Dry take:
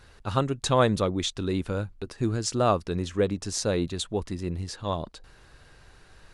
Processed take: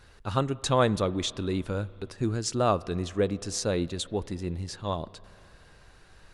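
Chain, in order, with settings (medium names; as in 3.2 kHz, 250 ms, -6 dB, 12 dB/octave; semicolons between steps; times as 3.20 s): spring tank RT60 3 s, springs 30/44 ms, chirp 55 ms, DRR 19.5 dB; trim -1.5 dB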